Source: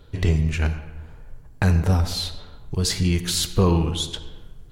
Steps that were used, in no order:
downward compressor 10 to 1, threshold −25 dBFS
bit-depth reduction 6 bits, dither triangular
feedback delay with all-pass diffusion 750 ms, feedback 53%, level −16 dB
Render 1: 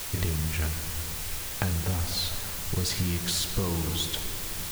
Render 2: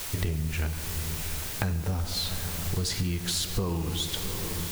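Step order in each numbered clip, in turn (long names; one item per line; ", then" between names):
downward compressor, then feedback delay with all-pass diffusion, then bit-depth reduction
feedback delay with all-pass diffusion, then bit-depth reduction, then downward compressor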